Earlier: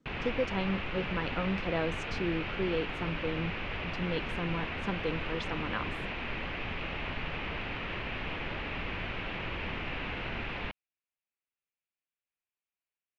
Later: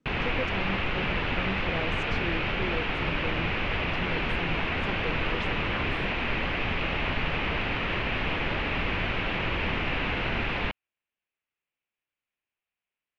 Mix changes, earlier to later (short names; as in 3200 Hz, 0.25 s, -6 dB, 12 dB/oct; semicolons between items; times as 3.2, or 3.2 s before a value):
speech -3.0 dB; background +8.0 dB